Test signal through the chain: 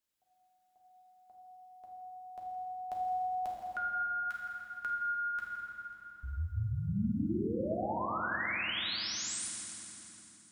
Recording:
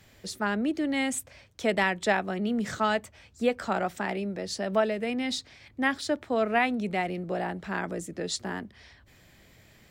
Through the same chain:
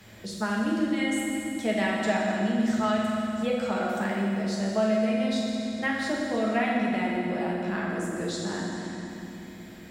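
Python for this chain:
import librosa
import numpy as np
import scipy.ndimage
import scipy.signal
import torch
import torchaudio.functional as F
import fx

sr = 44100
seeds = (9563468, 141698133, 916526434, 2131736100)

y = fx.rev_fdn(x, sr, rt60_s=2.5, lf_ratio=1.55, hf_ratio=0.8, size_ms=28.0, drr_db=-4.0)
y = fx.band_squash(y, sr, depth_pct=40)
y = y * 10.0 ** (-6.5 / 20.0)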